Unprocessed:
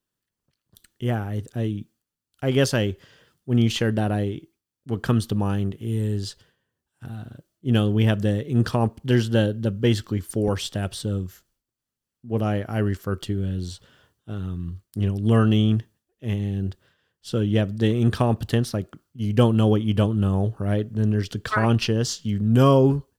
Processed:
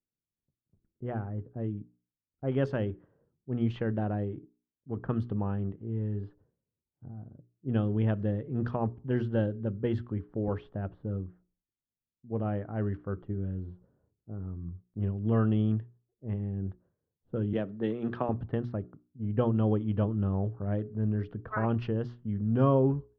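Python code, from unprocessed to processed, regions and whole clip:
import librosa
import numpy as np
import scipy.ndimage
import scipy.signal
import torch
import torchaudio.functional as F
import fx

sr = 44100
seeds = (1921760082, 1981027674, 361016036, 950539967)

y = fx.chain(x, sr, fx.highpass(hz=200.0, slope=12),
    fx.high_shelf(hz=3300.0, db=9.0),
    fx.band_squash(depth_pct=40), at=(17.53, 18.29))
y = fx.env_lowpass(y, sr, base_hz=400.0, full_db=-15.0)
y = scipy.signal.sosfilt(scipy.signal.butter(2, 1400.0, 'lowpass', fs=sr, output='sos'), y)
y = fx.hum_notches(y, sr, base_hz=60, count=7)
y = y * librosa.db_to_amplitude(-7.5)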